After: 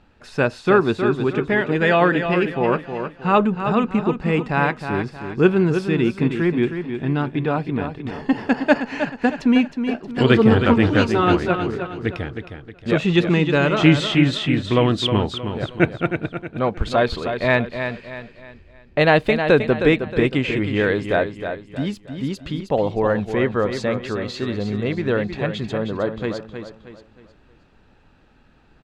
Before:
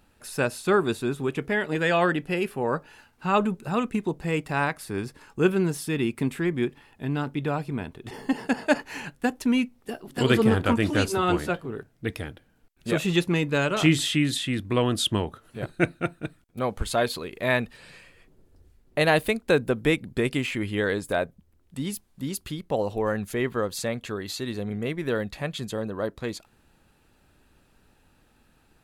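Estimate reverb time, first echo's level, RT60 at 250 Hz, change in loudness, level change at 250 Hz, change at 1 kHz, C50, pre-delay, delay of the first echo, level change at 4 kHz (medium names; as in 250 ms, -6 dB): no reverb, -8.0 dB, no reverb, +6.5 dB, +7.0 dB, +6.5 dB, no reverb, no reverb, 314 ms, +3.5 dB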